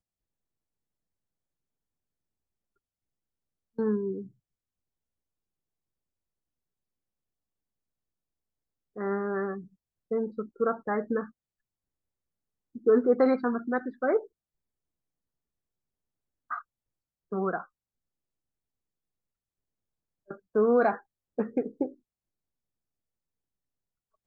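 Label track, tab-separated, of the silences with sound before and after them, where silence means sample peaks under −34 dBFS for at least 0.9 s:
4.220000	8.970000	silence
11.240000	12.760000	silence
14.190000	16.510000	silence
17.610000	20.310000	silence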